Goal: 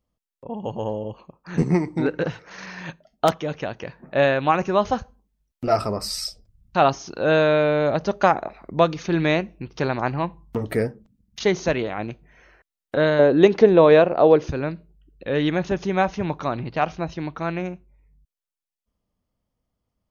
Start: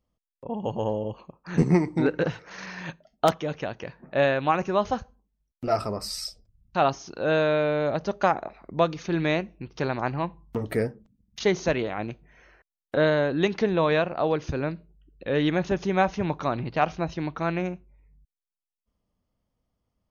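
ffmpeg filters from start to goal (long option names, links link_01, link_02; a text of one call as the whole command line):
ffmpeg -i in.wav -filter_complex "[0:a]asettb=1/sr,asplit=3[link_01][link_02][link_03];[link_01]atrim=end=13.194[link_04];[link_02]atrim=start=13.19:end=14.48,asetpts=PTS-STARTPTS,afade=type=in:duration=0.004:curve=qsin,afade=type=out:start_time=1.286:duration=0.004:curve=qsin,equalizer=frequency=450:width=0.8:gain=9.5[link_05];[link_03]atrim=start=14.476[link_06];[link_04][link_05]acrossfade=duration=0.004:curve1=hsin:curve2=qsin[link_07];[link_07][link_06]acrossfade=duration=0.004:curve1=qsin:curve2=hsin,dynaudnorm=framelen=230:gausssize=31:maxgain=6.5dB" out.wav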